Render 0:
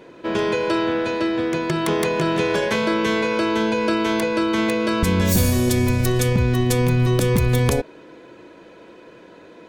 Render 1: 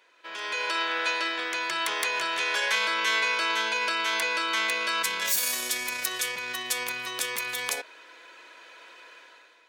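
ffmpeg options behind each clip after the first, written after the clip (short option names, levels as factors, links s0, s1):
-af "alimiter=limit=0.178:level=0:latency=1:release=12,highpass=1400,dynaudnorm=f=150:g=7:m=3.98,volume=0.447"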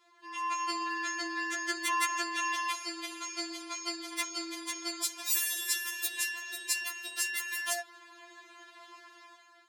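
-af "afftfilt=real='re*4*eq(mod(b,16),0)':imag='im*4*eq(mod(b,16),0)':win_size=2048:overlap=0.75"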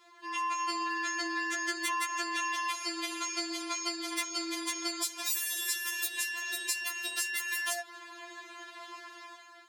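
-af "acompressor=threshold=0.0141:ratio=4,volume=2"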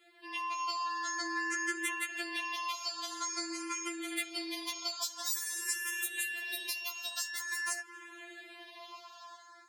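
-filter_complex "[0:a]asplit=2[s0][s1];[s1]afreqshift=0.48[s2];[s0][s2]amix=inputs=2:normalize=1"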